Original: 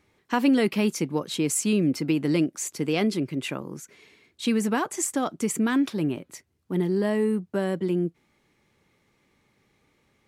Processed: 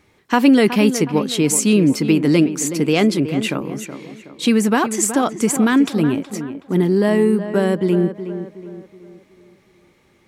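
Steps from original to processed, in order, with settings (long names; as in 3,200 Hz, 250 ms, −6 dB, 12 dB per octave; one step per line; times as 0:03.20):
tape delay 370 ms, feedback 47%, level −9.5 dB, low-pass 2,100 Hz
level +8.5 dB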